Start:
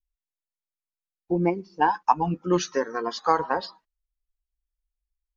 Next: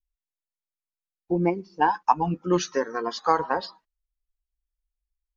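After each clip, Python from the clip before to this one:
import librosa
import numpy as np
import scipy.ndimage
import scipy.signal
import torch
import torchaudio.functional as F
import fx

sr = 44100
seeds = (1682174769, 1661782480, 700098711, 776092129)

y = x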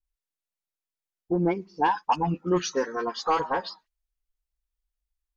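y = fx.vibrato(x, sr, rate_hz=6.0, depth_cents=36.0)
y = 10.0 ** (-13.0 / 20.0) * np.tanh(y / 10.0 ** (-13.0 / 20.0))
y = fx.dispersion(y, sr, late='highs', ms=43.0, hz=1900.0)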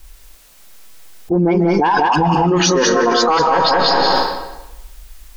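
y = x + 10.0 ** (-6.0 / 20.0) * np.pad(x, (int(196 * sr / 1000.0), 0))[:len(x)]
y = fx.rev_freeverb(y, sr, rt60_s=0.98, hf_ratio=0.85, predelay_ms=110, drr_db=11.5)
y = fx.env_flatten(y, sr, amount_pct=100)
y = y * librosa.db_to_amplitude(4.0)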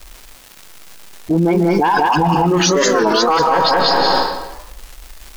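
y = fx.dmg_crackle(x, sr, seeds[0], per_s=390.0, level_db=-27.0)
y = fx.record_warp(y, sr, rpm=33.33, depth_cents=160.0)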